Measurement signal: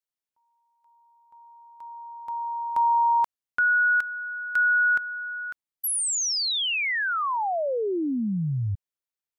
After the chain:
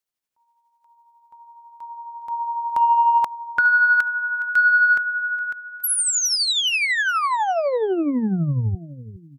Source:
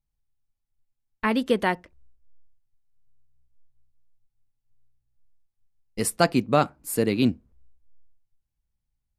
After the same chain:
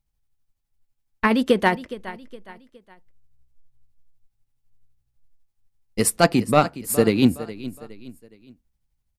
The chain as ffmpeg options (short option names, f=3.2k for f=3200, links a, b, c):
-af "aecho=1:1:415|830|1245:0.15|0.0584|0.0228,acontrast=81,tremolo=f=12:d=0.44"